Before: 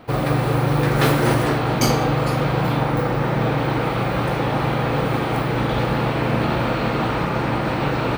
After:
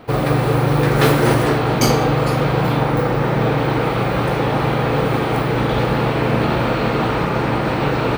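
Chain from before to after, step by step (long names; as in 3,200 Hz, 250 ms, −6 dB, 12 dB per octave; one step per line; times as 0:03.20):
parametric band 430 Hz +4 dB 0.28 octaves
level +2.5 dB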